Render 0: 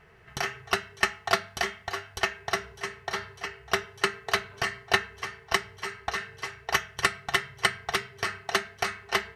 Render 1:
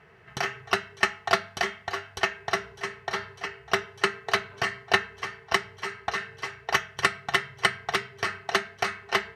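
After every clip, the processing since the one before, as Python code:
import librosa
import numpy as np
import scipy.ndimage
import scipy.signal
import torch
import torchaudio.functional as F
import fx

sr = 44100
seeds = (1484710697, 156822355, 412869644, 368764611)

y = scipy.signal.sosfilt(scipy.signal.butter(2, 94.0, 'highpass', fs=sr, output='sos'), x)
y = fx.high_shelf(y, sr, hz=7400.0, db=-9.5)
y = y * 10.0 ** (2.0 / 20.0)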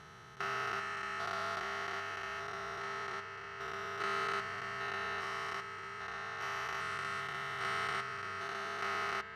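y = fx.spec_steps(x, sr, hold_ms=400)
y = fx.peak_eq(y, sr, hz=1300.0, db=9.5, octaves=0.37)
y = y * 10.0 ** (-6.0 / 20.0)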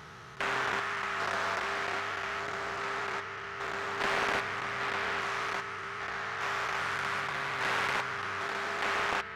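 y = fx.doppler_dist(x, sr, depth_ms=0.58)
y = y * 10.0 ** (6.0 / 20.0)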